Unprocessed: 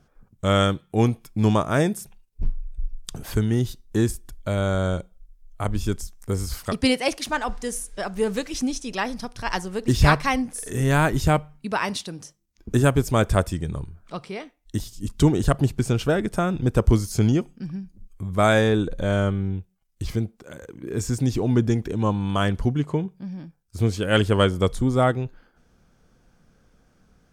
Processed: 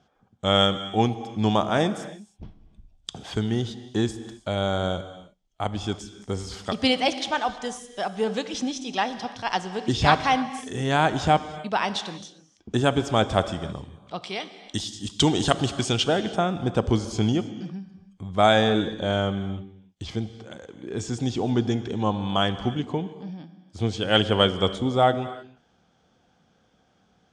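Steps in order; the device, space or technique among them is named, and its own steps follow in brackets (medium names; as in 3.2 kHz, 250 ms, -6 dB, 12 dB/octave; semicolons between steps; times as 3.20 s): 14.22–16.04 s: treble shelf 2.1 kHz +11 dB; car door speaker (cabinet simulation 100–7400 Hz, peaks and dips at 140 Hz -4 dB, 770 Hz +9 dB, 3.3 kHz +10 dB); gated-style reverb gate 340 ms flat, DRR 12 dB; trim -2.5 dB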